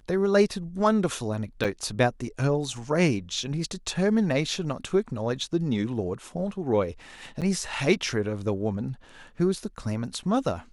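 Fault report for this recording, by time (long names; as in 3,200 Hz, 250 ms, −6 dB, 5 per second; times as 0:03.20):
0:01.64–0:01.65: drop-out 6.6 ms
0:07.41–0:07.42: drop-out 7.6 ms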